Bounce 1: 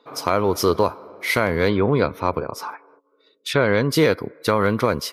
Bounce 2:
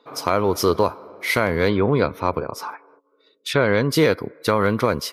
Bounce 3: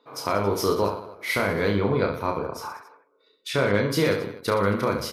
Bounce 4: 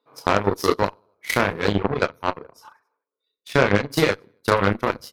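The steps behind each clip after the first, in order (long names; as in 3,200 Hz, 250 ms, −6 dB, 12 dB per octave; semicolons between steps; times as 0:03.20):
no processing that can be heard
reverse bouncing-ball delay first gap 30 ms, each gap 1.3×, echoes 5; level −6 dB
reverb reduction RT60 1.9 s; harmonic generator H 7 −18 dB, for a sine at −8.5 dBFS; level +7 dB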